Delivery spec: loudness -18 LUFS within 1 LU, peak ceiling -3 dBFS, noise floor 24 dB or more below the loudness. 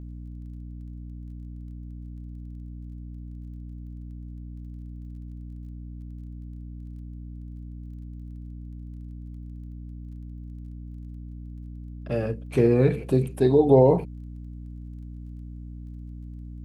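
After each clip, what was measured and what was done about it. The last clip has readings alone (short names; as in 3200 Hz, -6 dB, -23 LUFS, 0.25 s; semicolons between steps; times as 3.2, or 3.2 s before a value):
ticks 21/s; hum 60 Hz; harmonics up to 300 Hz; hum level -36 dBFS; loudness -21.5 LUFS; peak -5.5 dBFS; loudness target -18.0 LUFS
-> de-click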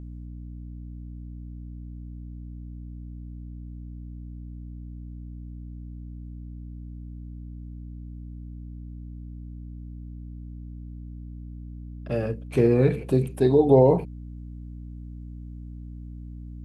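ticks 0/s; hum 60 Hz; harmonics up to 300 Hz; hum level -36 dBFS
-> notches 60/120/180/240/300 Hz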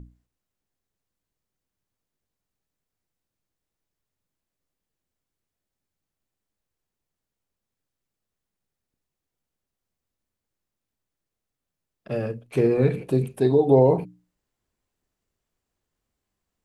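hum none; loudness -21.5 LUFS; peak -5.0 dBFS; loudness target -18.0 LUFS
-> gain +3.5 dB; limiter -3 dBFS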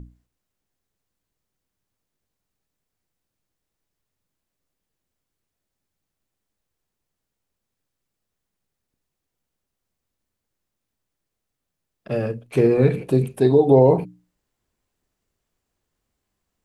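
loudness -18.5 LUFS; peak -3.0 dBFS; noise floor -82 dBFS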